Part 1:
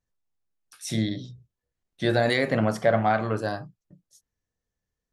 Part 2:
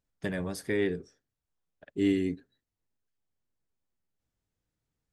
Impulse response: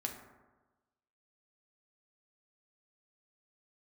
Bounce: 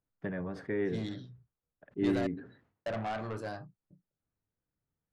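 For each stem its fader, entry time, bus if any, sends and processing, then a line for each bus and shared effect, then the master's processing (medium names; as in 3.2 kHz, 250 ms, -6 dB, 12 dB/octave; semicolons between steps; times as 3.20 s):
-8.0 dB, 0.00 s, muted 2.27–2.86 s, no send, level-controlled noise filter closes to 420 Hz, open at -22 dBFS; saturation -23 dBFS, distortion -8 dB
-3.0 dB, 0.00 s, no send, Chebyshev band-pass 110–1500 Hz, order 2; decay stretcher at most 110 dB/s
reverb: none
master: none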